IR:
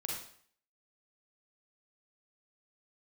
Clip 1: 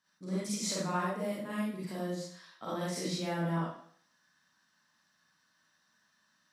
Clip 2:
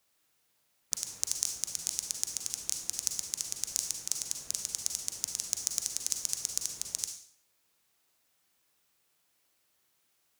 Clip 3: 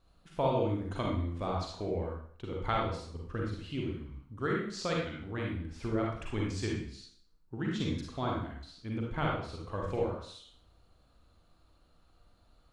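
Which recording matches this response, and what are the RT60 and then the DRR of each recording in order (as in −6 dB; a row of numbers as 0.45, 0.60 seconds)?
3; 0.55, 0.55, 0.55 seconds; −8.5, 4.5, −2.0 decibels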